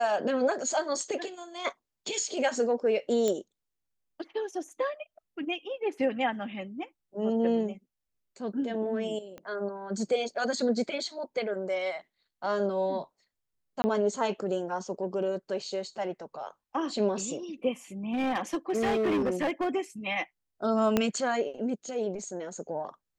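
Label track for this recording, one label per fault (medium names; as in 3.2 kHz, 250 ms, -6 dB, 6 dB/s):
3.280000	3.280000	pop -16 dBFS
9.380000	9.380000	pop -29 dBFS
13.820000	13.840000	dropout 20 ms
18.130000	19.690000	clipped -23.5 dBFS
20.970000	20.970000	pop -10 dBFS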